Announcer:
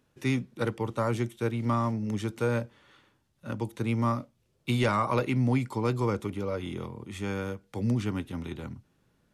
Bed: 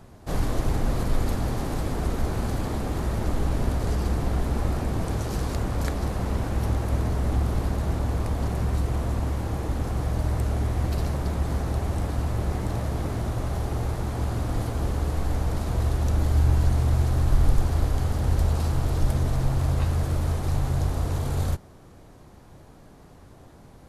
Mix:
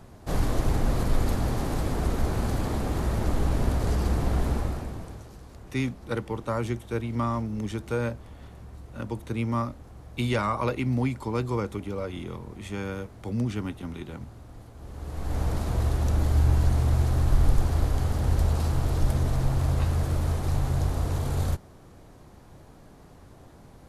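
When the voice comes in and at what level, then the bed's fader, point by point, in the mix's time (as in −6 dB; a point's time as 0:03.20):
5.50 s, −0.5 dB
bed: 0:04.50 0 dB
0:05.38 −19 dB
0:14.75 −19 dB
0:15.41 −1 dB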